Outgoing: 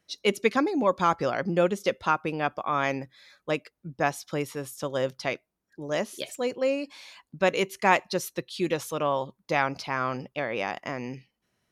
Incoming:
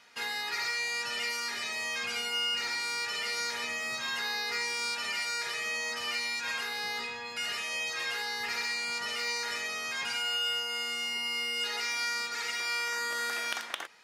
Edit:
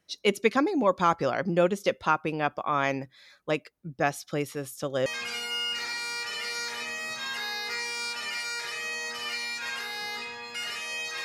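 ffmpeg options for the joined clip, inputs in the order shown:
ffmpeg -i cue0.wav -i cue1.wav -filter_complex "[0:a]asettb=1/sr,asplit=3[link_01][link_02][link_03];[link_01]atrim=end=3.844[link_04];[link_02]atrim=start=3.84:end=5.06,asetpts=PTS-STARTPTS,afade=type=in:duration=0.004:curve=qsin,afade=type=out:start_time=1.216:duration=0.004:curve=qsin,bandreject=frequency=960:width=5.2[link_05];[link_03]atrim=start=5.056[link_06];[link_04][link_05]acrossfade=duration=0.004:curve1=hsin:curve2=qsin[link_07];[link_07][link_06]acrossfade=duration=0.004:curve1=qsin:curve2=hsin,apad=whole_dur=11.24,atrim=end=11.24,atrim=end=5.062[link_08];[1:a]atrim=start=1.878:end=8.06[link_09];[link_08][link_09]acrossfade=duration=0.004:curve1=hsin:curve2=hsin" out.wav

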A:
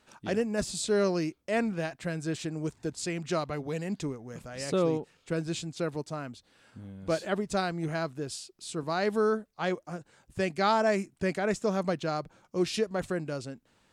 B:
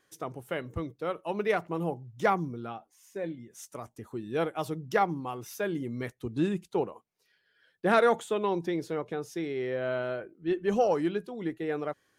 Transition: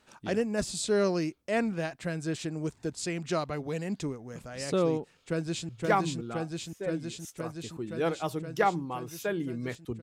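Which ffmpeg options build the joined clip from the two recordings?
ffmpeg -i cue0.wav -i cue1.wav -filter_complex "[0:a]apad=whole_dur=10.02,atrim=end=10.02,atrim=end=5.692[link_01];[1:a]atrim=start=2.038:end=6.37[link_02];[link_01][link_02]acrossfade=duration=0.004:curve1=hsin:curve2=hsin,asplit=2[link_03][link_04];[link_04]afade=type=in:start_time=5.05:duration=0.01,afade=type=out:start_time=5.69:duration=0.01,aecho=0:1:520|1040|1560|2080|2600|3120|3640|4160|4680|5200|5720|6240:0.841395|0.673116|0.538493|0.430794|0.344635|0.275708|0.220567|0.176453|0.141163|0.11293|0.0903441|0.0722753[link_05];[link_03][link_05]amix=inputs=2:normalize=0" out.wav

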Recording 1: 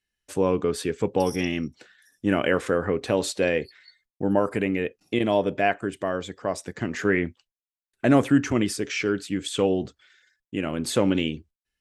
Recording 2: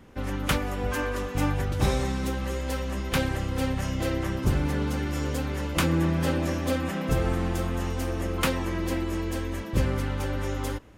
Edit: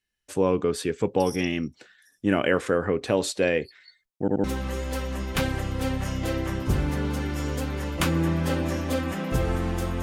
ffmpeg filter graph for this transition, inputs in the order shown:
ffmpeg -i cue0.wav -i cue1.wav -filter_complex "[0:a]apad=whole_dur=10.02,atrim=end=10.02,asplit=3[link_01][link_02][link_03];[link_01]atrim=end=4.282[link_04];[link_02]atrim=start=4.198:end=4.282[link_05];[link_03]atrim=start=4.198:end=4.282[link_06];[1:a]atrim=start=2.208:end=7.79[link_07];[link_04][link_05]acrossfade=duration=0.004:curve1=hsin:curve2=hsin[link_08];[link_08][link_06]acrossfade=duration=0.004:curve1=hsin:curve2=hsin[link_09];[link_09][link_07]acrossfade=duration=0.004:curve1=hsin:curve2=hsin" out.wav

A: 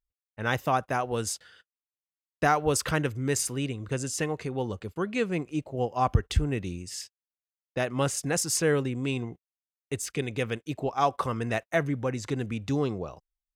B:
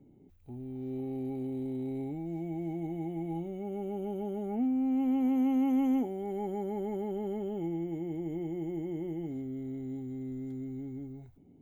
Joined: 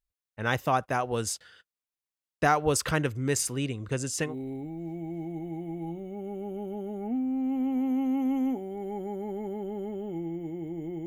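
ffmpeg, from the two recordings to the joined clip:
ffmpeg -i cue0.wav -i cue1.wav -filter_complex "[0:a]apad=whole_dur=11.06,atrim=end=11.06,atrim=end=4.36,asetpts=PTS-STARTPTS[link_01];[1:a]atrim=start=1.7:end=8.54,asetpts=PTS-STARTPTS[link_02];[link_01][link_02]acrossfade=duration=0.14:curve1=tri:curve2=tri" out.wav

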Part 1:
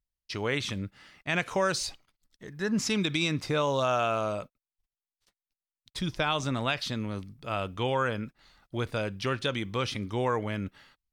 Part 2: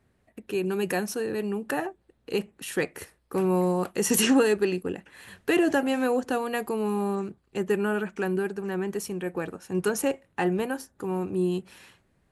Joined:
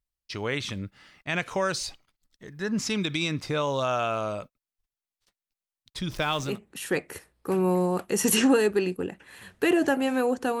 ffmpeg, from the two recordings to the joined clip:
ffmpeg -i cue0.wav -i cue1.wav -filter_complex "[0:a]asettb=1/sr,asplit=3[link_01][link_02][link_03];[link_01]atrim=end=6.104[link_04];[link_02]atrim=start=6.1:end=6.59,asetpts=PTS-STARTPTS,afade=type=in:duration=0.004:curve=qsin,afade=type=out:start_time=0.486:duration=0.004:curve=qsin,aeval=exprs='val(0)+0.5*0.0112*sgn(val(0))':channel_layout=same[link_05];[link_03]atrim=start=6.586[link_06];[link_04][link_05]acrossfade=duration=0.004:curve1=hsin:curve2=qsin[link_07];[link_07][link_06]acrossfade=duration=0.004:curve1=qsin:curve2=hsin,apad=whole_dur=10.6,atrim=end=10.6,atrim=end=6.59,asetpts=PTS-STARTPTS[link_08];[1:a]atrim=start=2.27:end=6.46,asetpts=PTS-STARTPTS[link_09];[link_08][link_09]acrossfade=duration=0.18:curve1=tri:curve2=tri" out.wav

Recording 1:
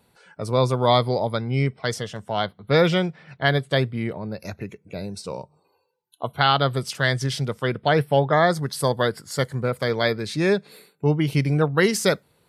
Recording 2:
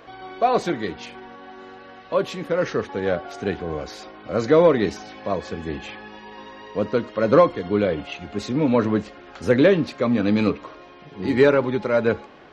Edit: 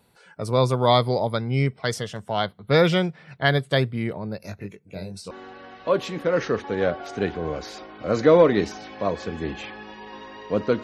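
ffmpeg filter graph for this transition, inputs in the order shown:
ffmpeg -i cue0.wav -i cue1.wav -filter_complex "[0:a]asettb=1/sr,asplit=3[link_01][link_02][link_03];[link_01]atrim=end=4.384[link_04];[link_02]atrim=start=4.38:end=5.31,asetpts=PTS-STARTPTS,afade=type=in:duration=0.004:curve=qsin,afade=type=out:start_time=0.926:duration=0.004:curve=qsin,flanger=delay=19:depth=2.4:speed=0.68[link_05];[link_03]atrim=start=5.306[link_06];[link_04][link_05]acrossfade=duration=0.004:curve1=hsin:curve2=qsin[link_07];[link_07][link_06]acrossfade=duration=0.004:curve1=qsin:curve2=hsin,apad=whole_dur=10.83,atrim=end=10.83,atrim=end=5.312[link_08];[1:a]atrim=start=1.558:end=7.08[link_09];[link_08][link_09]acrossfade=duration=0.004:curve1=hsin:curve2=hsin" out.wav

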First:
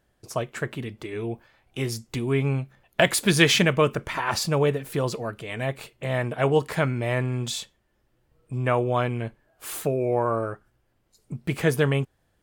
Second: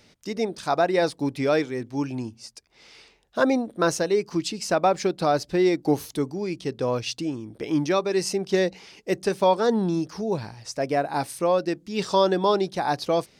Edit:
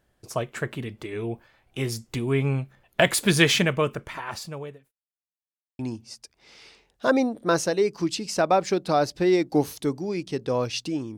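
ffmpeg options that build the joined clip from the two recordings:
ffmpeg -i cue0.wav -i cue1.wav -filter_complex "[0:a]apad=whole_dur=11.17,atrim=end=11.17,asplit=2[link_01][link_02];[link_01]atrim=end=4.92,asetpts=PTS-STARTPTS,afade=type=out:start_time=3.31:duration=1.61[link_03];[link_02]atrim=start=4.92:end=5.79,asetpts=PTS-STARTPTS,volume=0[link_04];[1:a]atrim=start=2.12:end=7.5,asetpts=PTS-STARTPTS,afade=type=in:duration=0.004:curve=hsin[link_05];[link_03][link_04][link_05]concat=n=3:v=0:a=1" out.wav

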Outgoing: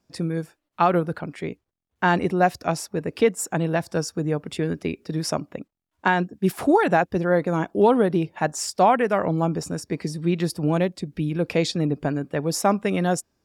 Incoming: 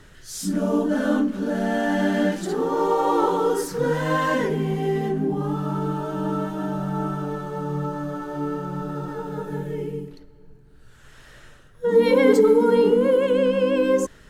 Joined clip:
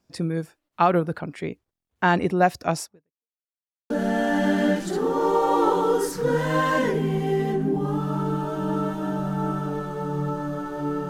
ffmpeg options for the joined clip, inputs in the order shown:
ffmpeg -i cue0.wav -i cue1.wav -filter_complex "[0:a]apad=whole_dur=11.09,atrim=end=11.09,asplit=2[link_01][link_02];[link_01]atrim=end=3.3,asetpts=PTS-STARTPTS,afade=type=out:start_time=2.83:duration=0.47:curve=exp[link_03];[link_02]atrim=start=3.3:end=3.9,asetpts=PTS-STARTPTS,volume=0[link_04];[1:a]atrim=start=1.46:end=8.65,asetpts=PTS-STARTPTS,afade=type=in:duration=0.004:curve=hsin[link_05];[link_03][link_04][link_05]concat=n=3:v=0:a=1" out.wav

